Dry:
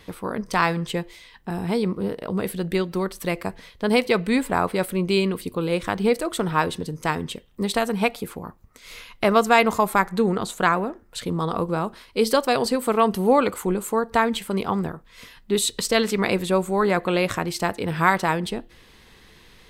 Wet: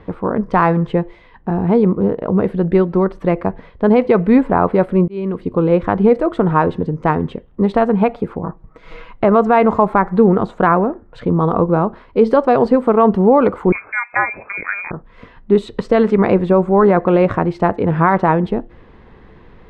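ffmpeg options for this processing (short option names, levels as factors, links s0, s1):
-filter_complex "[0:a]asettb=1/sr,asplit=3[s0][s1][s2];[s0]atrim=end=8.434[s3];[s1]atrim=start=8.43:end=9.11,asetpts=PTS-STARTPTS,afade=t=in:d=0.004:c=qsin,afade=t=out:st=0.676:d=0.004:c=qsin,aecho=1:1:6.2:0.89,atrim=end_sample=29988[s4];[s2]atrim=start=9.106[s5];[s3][s4]acrossfade=d=0.004:c1=hsin:c2=qsin[s6];[s6][s5]acrossfade=d=0.004:c1=qsin:c2=hsin,asettb=1/sr,asplit=3[s7][s8][s9];[s7]atrim=end=13.724[s10];[s8]atrim=start=13.72:end=14.91,asetpts=PTS-STARTPTS,afade=t=in:d=0.004:c=qsin,afade=t=out:st=1.186:d=0.004:c=qsin,lowpass=f=2200:t=q:w=0.5098,lowpass=f=2200:t=q:w=0.6013,lowpass=f=2200:t=q:w=0.9,lowpass=f=2200:t=q:w=2.563,afreqshift=-2600[s11];[s9]atrim=start=14.906[s12];[s10][s11]acrossfade=d=0.004:c1=hsin:c2=qsin[s13];[s13][s12]acrossfade=d=0.004:c1=qsin:c2=hsin,asplit=2[s14][s15];[s14]atrim=end=5.08,asetpts=PTS-STARTPTS,afade=t=out:st=5.076:d=0.004:c=hsin[s16];[s15]atrim=start=5.08,asetpts=PTS-STARTPTS,afade=t=in:d=0.46[s17];[s16][s17]concat=n=2:v=0:a=1,lowpass=1100,alimiter=level_in=3.76:limit=0.891:release=50:level=0:latency=1,volume=0.891"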